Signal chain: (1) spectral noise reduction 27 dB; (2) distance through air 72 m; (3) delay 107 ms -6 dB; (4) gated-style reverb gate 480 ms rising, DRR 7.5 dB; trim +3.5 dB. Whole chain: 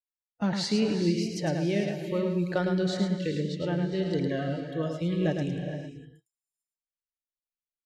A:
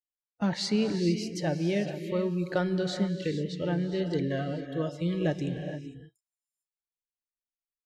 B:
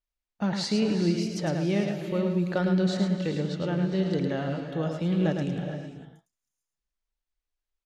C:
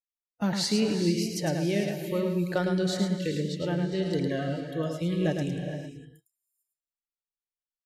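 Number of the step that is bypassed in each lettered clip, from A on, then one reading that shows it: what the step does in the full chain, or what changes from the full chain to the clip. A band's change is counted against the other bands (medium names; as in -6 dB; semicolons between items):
3, echo-to-direct -3.0 dB to -7.5 dB; 1, loudness change +1.5 LU; 2, 8 kHz band +5.5 dB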